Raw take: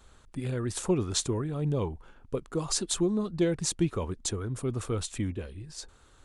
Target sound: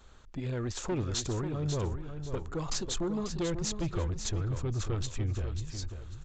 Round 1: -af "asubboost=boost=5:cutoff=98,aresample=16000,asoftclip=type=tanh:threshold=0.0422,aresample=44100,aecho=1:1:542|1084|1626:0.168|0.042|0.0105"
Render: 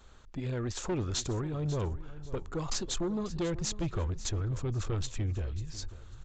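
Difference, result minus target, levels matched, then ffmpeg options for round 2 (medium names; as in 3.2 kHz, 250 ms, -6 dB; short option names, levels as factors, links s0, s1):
echo-to-direct -7 dB
-af "asubboost=boost=5:cutoff=98,aresample=16000,asoftclip=type=tanh:threshold=0.0422,aresample=44100,aecho=1:1:542|1084|1626:0.376|0.094|0.0235"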